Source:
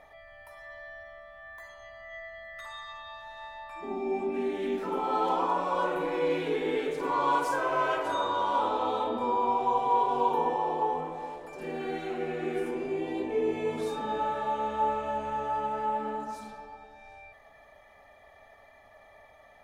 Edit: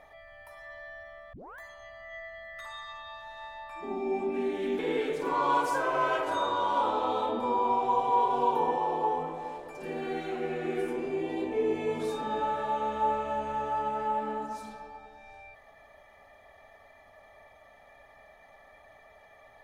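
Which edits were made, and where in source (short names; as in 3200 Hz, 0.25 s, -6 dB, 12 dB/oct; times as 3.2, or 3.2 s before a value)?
1.33 tape start 0.26 s
4.79–6.57 cut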